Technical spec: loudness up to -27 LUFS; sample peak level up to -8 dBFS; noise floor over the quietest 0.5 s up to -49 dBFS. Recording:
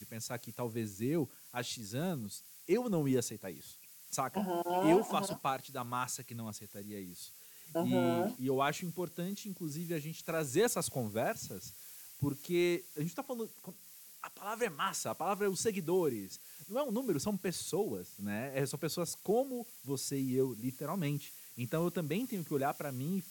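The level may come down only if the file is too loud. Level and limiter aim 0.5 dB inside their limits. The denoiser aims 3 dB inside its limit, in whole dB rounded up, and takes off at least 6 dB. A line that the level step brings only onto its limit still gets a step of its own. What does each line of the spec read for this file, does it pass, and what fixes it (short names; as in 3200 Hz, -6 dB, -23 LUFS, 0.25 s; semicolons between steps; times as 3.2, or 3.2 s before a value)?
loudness -36.0 LUFS: OK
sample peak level -15.5 dBFS: OK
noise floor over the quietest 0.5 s -55 dBFS: OK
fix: none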